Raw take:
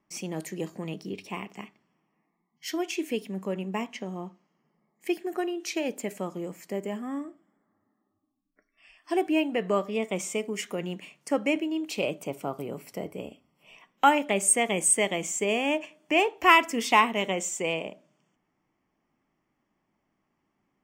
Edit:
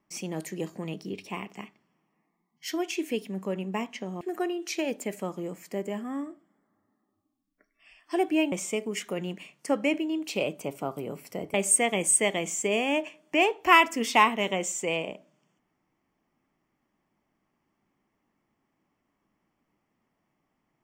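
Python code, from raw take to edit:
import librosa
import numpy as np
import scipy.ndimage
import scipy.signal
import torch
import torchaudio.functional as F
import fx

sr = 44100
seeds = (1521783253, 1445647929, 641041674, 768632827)

y = fx.edit(x, sr, fx.cut(start_s=4.21, length_s=0.98),
    fx.cut(start_s=9.5, length_s=0.64),
    fx.cut(start_s=13.16, length_s=1.15), tone=tone)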